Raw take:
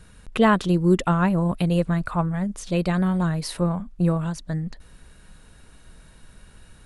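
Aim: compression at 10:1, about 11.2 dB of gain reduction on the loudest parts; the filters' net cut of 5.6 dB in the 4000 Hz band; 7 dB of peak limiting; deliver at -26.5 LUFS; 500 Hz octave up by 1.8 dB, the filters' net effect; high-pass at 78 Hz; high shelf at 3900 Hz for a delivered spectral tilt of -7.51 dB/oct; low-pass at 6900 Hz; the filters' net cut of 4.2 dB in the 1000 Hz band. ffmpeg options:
-af "highpass=78,lowpass=6.9k,equalizer=f=500:t=o:g=4,equalizer=f=1k:t=o:g=-6,highshelf=f=3.9k:g=-5.5,equalizer=f=4k:t=o:g=-3.5,acompressor=threshold=-23dB:ratio=10,volume=3.5dB,alimiter=limit=-18dB:level=0:latency=1"

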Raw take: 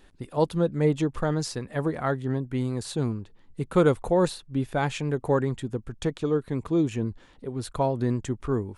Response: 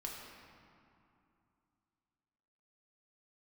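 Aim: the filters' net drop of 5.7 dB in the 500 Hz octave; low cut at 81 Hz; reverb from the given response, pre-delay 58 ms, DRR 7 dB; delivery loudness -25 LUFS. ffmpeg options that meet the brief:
-filter_complex "[0:a]highpass=81,equalizer=f=500:t=o:g=-7,asplit=2[a][b];[1:a]atrim=start_sample=2205,adelay=58[c];[b][c]afir=irnorm=-1:irlink=0,volume=-6dB[d];[a][d]amix=inputs=2:normalize=0,volume=4dB"

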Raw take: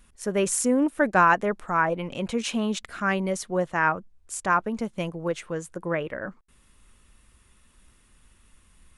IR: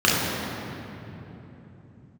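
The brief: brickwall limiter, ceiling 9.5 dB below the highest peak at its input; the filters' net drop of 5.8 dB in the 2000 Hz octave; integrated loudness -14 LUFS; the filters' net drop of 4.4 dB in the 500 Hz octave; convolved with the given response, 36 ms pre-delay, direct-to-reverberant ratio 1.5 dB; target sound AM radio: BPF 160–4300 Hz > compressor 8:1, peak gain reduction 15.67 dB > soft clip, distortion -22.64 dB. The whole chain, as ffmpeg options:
-filter_complex "[0:a]equalizer=f=500:t=o:g=-5,equalizer=f=2k:t=o:g=-8,alimiter=limit=-19.5dB:level=0:latency=1,asplit=2[a][b];[1:a]atrim=start_sample=2205,adelay=36[c];[b][c]afir=irnorm=-1:irlink=0,volume=-23dB[d];[a][d]amix=inputs=2:normalize=0,highpass=160,lowpass=4.3k,acompressor=threshold=-35dB:ratio=8,asoftclip=threshold=-29dB,volume=26dB"

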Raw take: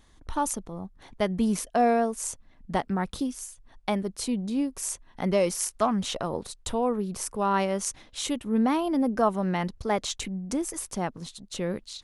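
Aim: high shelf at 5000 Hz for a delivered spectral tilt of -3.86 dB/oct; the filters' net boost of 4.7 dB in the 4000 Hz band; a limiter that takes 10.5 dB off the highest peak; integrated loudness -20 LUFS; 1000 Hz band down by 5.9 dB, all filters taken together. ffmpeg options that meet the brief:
-af "equalizer=f=1k:t=o:g=-9,equalizer=f=4k:t=o:g=4.5,highshelf=f=5k:g=4,volume=10dB,alimiter=limit=-8dB:level=0:latency=1"

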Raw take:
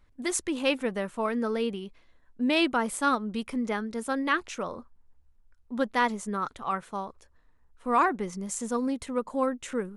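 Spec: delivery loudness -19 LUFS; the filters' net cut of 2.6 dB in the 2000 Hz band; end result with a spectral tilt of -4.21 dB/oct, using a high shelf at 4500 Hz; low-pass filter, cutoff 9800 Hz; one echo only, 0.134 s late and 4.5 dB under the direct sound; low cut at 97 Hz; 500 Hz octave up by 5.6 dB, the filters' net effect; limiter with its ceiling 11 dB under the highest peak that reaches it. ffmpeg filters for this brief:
-af "highpass=97,lowpass=9.8k,equalizer=f=500:t=o:g=6.5,equalizer=f=2k:t=o:g=-5,highshelf=f=4.5k:g=5,alimiter=limit=-21.5dB:level=0:latency=1,aecho=1:1:134:0.596,volume=11dB"

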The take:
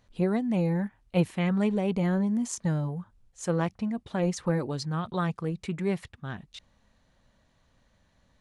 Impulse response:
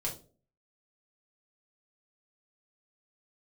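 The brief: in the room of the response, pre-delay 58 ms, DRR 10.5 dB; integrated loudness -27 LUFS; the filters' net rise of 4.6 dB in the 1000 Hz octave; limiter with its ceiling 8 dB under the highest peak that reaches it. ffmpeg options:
-filter_complex "[0:a]equalizer=f=1k:t=o:g=6,alimiter=limit=-18.5dB:level=0:latency=1,asplit=2[a][b];[1:a]atrim=start_sample=2205,adelay=58[c];[b][c]afir=irnorm=-1:irlink=0,volume=-13dB[d];[a][d]amix=inputs=2:normalize=0,volume=2dB"

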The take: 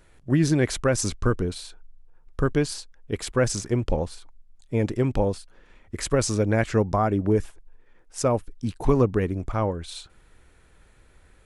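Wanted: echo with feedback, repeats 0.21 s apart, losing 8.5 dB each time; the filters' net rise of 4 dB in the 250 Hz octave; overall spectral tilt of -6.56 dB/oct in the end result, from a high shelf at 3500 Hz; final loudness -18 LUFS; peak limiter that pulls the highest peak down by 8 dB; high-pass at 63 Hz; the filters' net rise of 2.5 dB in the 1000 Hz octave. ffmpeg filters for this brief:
-af "highpass=63,equalizer=f=250:t=o:g=5,equalizer=f=1k:t=o:g=3.5,highshelf=f=3.5k:g=-4.5,alimiter=limit=-14.5dB:level=0:latency=1,aecho=1:1:210|420|630|840:0.376|0.143|0.0543|0.0206,volume=8dB"

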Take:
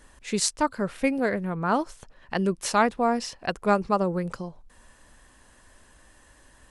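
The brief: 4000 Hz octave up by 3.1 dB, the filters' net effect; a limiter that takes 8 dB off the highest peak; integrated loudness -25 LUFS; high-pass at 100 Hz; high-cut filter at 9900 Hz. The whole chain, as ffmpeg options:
-af "highpass=100,lowpass=9.9k,equalizer=f=4k:t=o:g=4,volume=3dB,alimiter=limit=-12dB:level=0:latency=1"

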